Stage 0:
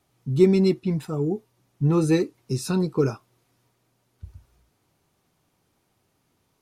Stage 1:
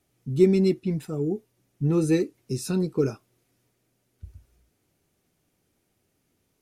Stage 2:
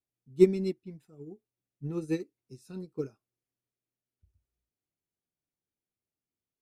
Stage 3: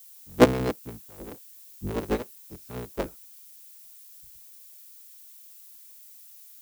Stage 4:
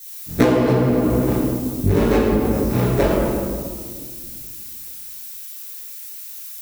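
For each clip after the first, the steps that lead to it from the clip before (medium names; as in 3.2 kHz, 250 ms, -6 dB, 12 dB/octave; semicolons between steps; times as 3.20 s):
graphic EQ 125/1000/4000 Hz -4/-10/-4 dB
upward expansion 2.5:1, over -29 dBFS
cycle switcher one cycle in 3, inverted; treble shelf 4.3 kHz -8 dB; added noise violet -53 dBFS; trim +3.5 dB
reverberation RT60 1.8 s, pre-delay 7 ms, DRR -9 dB; compression 16:1, threshold -18 dBFS, peak gain reduction 18 dB; trim +6 dB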